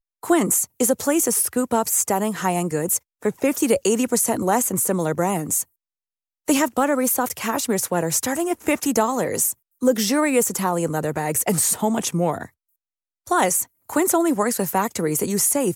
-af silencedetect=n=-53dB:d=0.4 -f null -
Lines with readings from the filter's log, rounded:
silence_start: 5.65
silence_end: 6.47 | silence_duration: 0.82
silence_start: 12.50
silence_end: 13.26 | silence_duration: 0.76